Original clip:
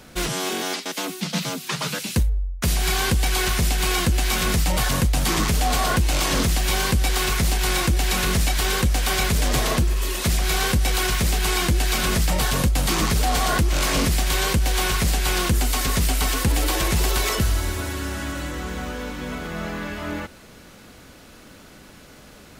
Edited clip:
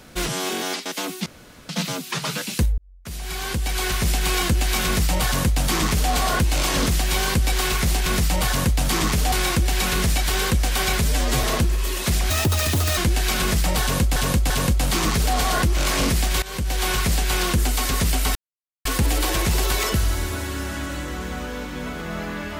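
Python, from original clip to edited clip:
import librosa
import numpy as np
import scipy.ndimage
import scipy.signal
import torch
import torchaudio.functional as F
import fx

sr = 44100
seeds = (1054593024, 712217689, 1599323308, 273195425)

y = fx.edit(x, sr, fx.insert_room_tone(at_s=1.26, length_s=0.43),
    fx.fade_in_span(start_s=2.35, length_s=1.36),
    fx.duplicate(start_s=4.42, length_s=1.26, to_s=7.63),
    fx.stretch_span(start_s=9.35, length_s=0.26, factor=1.5),
    fx.speed_span(start_s=10.48, length_s=1.13, speed=1.68),
    fx.repeat(start_s=12.46, length_s=0.34, count=3),
    fx.fade_in_from(start_s=14.38, length_s=0.59, curve='qsin', floor_db=-19.5),
    fx.insert_silence(at_s=16.31, length_s=0.5), tone=tone)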